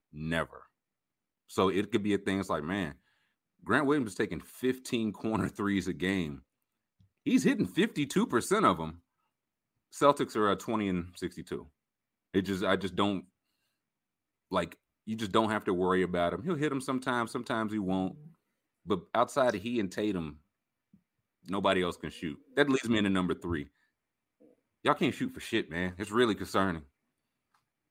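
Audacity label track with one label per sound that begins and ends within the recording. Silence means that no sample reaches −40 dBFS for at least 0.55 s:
1.530000	2.920000	sound
3.670000	6.360000	sound
7.270000	8.910000	sound
9.940000	11.630000	sound
12.350000	13.200000	sound
14.520000	18.110000	sound
18.880000	20.310000	sound
21.490000	23.630000	sound
24.850000	26.800000	sound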